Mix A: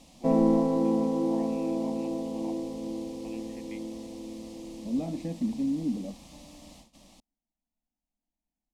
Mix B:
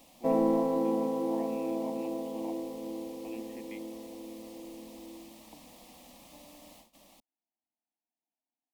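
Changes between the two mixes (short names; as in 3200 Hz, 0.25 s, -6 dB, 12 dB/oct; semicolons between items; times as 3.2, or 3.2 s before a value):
second voice: muted; background: add tone controls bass -12 dB, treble -8 dB; master: remove LPF 6800 Hz 12 dB/oct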